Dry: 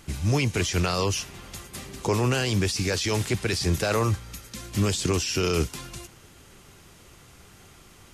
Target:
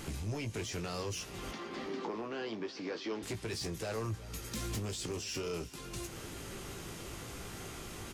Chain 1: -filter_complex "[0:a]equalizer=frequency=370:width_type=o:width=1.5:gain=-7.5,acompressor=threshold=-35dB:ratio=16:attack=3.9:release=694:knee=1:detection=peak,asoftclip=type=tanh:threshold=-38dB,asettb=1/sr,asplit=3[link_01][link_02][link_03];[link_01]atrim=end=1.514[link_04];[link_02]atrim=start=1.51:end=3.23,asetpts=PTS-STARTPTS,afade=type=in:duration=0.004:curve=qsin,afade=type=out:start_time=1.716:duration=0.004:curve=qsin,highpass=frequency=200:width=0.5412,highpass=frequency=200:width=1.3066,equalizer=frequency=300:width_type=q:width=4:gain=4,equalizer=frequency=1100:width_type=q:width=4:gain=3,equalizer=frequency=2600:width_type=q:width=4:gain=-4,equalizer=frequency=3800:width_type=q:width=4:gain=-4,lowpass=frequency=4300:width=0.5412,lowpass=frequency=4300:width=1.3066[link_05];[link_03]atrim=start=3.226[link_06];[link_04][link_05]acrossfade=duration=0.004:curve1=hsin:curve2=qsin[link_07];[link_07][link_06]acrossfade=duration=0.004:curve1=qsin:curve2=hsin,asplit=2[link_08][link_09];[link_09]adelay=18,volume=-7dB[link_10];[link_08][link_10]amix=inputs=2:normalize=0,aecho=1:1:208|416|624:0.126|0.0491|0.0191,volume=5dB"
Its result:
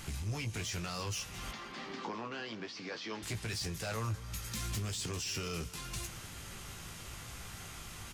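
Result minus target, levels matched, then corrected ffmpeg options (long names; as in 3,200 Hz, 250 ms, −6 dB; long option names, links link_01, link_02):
echo 160 ms early; 500 Hz band −6.0 dB
-filter_complex "[0:a]equalizer=frequency=370:width_type=o:width=1.5:gain=4,acompressor=threshold=-35dB:ratio=16:attack=3.9:release=694:knee=1:detection=peak,asoftclip=type=tanh:threshold=-38dB,asettb=1/sr,asplit=3[link_01][link_02][link_03];[link_01]atrim=end=1.514[link_04];[link_02]atrim=start=1.51:end=3.23,asetpts=PTS-STARTPTS,afade=type=in:duration=0.004:curve=qsin,afade=type=out:start_time=1.716:duration=0.004:curve=qsin,highpass=frequency=200:width=0.5412,highpass=frequency=200:width=1.3066,equalizer=frequency=300:width_type=q:width=4:gain=4,equalizer=frequency=1100:width_type=q:width=4:gain=3,equalizer=frequency=2600:width_type=q:width=4:gain=-4,equalizer=frequency=3800:width_type=q:width=4:gain=-4,lowpass=frequency=4300:width=0.5412,lowpass=frequency=4300:width=1.3066[link_05];[link_03]atrim=start=3.226[link_06];[link_04][link_05]acrossfade=duration=0.004:curve1=hsin:curve2=qsin[link_07];[link_07][link_06]acrossfade=duration=0.004:curve1=qsin:curve2=hsin,asplit=2[link_08][link_09];[link_09]adelay=18,volume=-7dB[link_10];[link_08][link_10]amix=inputs=2:normalize=0,aecho=1:1:368|736|1104:0.126|0.0491|0.0191,volume=5dB"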